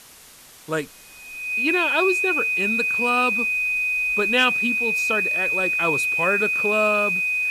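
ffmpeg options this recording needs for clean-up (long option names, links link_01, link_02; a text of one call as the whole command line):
ffmpeg -i in.wav -af "adeclick=threshold=4,bandreject=frequency=2500:width=30,afwtdn=0.0056" out.wav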